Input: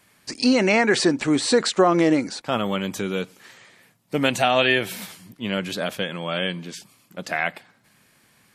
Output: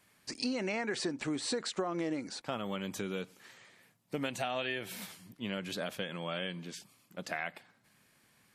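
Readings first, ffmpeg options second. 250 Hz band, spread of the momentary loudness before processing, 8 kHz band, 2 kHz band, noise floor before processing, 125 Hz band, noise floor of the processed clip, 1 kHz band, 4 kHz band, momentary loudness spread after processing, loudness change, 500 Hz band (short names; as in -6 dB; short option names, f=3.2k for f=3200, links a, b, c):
-15.0 dB, 18 LU, -12.5 dB, -15.0 dB, -60 dBFS, -13.0 dB, -68 dBFS, -15.5 dB, -13.5 dB, 13 LU, -15.5 dB, -15.5 dB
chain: -af "acompressor=threshold=-24dB:ratio=4,volume=-8.5dB"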